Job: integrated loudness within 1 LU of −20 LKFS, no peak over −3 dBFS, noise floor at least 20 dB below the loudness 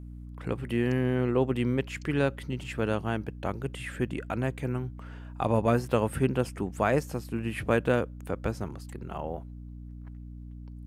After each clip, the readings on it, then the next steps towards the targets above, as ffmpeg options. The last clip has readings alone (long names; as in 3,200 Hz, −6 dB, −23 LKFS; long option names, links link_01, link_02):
mains hum 60 Hz; hum harmonics up to 300 Hz; level of the hum −41 dBFS; integrated loudness −30.0 LKFS; sample peak −11.0 dBFS; target loudness −20.0 LKFS
→ -af "bandreject=frequency=60:width_type=h:width=6,bandreject=frequency=120:width_type=h:width=6,bandreject=frequency=180:width_type=h:width=6,bandreject=frequency=240:width_type=h:width=6,bandreject=frequency=300:width_type=h:width=6"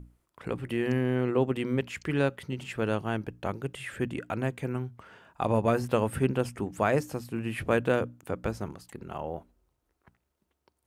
mains hum none found; integrated loudness −30.5 LKFS; sample peak −11.5 dBFS; target loudness −20.0 LKFS
→ -af "volume=10.5dB,alimiter=limit=-3dB:level=0:latency=1"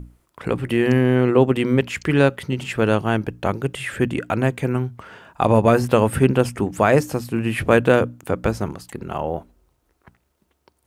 integrated loudness −20.0 LKFS; sample peak −3.0 dBFS; background noise floor −69 dBFS